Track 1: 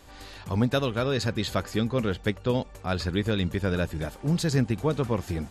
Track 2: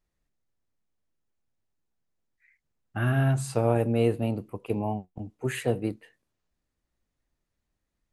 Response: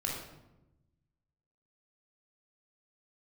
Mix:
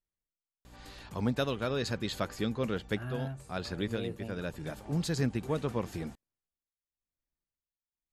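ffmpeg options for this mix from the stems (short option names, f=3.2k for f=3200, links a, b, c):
-filter_complex "[0:a]equalizer=f=72:t=o:w=0.55:g=-14.5,aeval=exprs='val(0)+0.00398*(sin(2*PI*60*n/s)+sin(2*PI*2*60*n/s)/2+sin(2*PI*3*60*n/s)/3+sin(2*PI*4*60*n/s)/4+sin(2*PI*5*60*n/s)/5)':c=same,adelay=650,volume=-5.5dB[a];[1:a]tremolo=f=0.96:d=0.82,volume=-14dB,asplit=2[b][c];[c]apad=whole_len=271277[d];[a][d]sidechaincompress=threshold=-41dB:ratio=8:attack=41:release=831[e];[e][b]amix=inputs=2:normalize=0"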